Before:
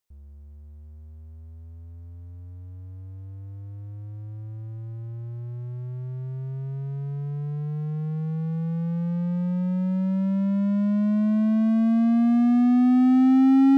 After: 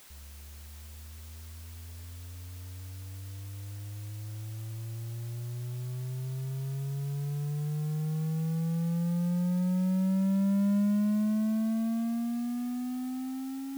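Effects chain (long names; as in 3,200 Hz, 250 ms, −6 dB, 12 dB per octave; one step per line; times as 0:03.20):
compressor whose output falls as the input rises −22 dBFS, ratio −0.5
bit-depth reduction 8 bits, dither triangular
level −5.5 dB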